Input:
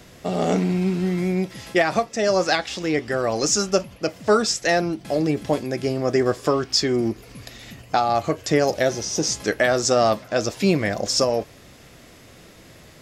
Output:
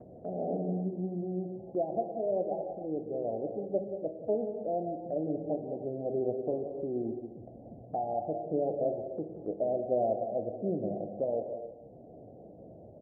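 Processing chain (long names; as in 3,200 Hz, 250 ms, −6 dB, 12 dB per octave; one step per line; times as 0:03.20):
high-pass filter 68 Hz
downward expander −44 dBFS
Butterworth low-pass 750 Hz 72 dB per octave
low-shelf EQ 310 Hz −9.5 dB
upward compression, threshold −30 dBFS
slap from a distant wall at 31 metres, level −11 dB
reverb whose tail is shaped and stops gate 330 ms flat, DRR 5 dB
level −8.5 dB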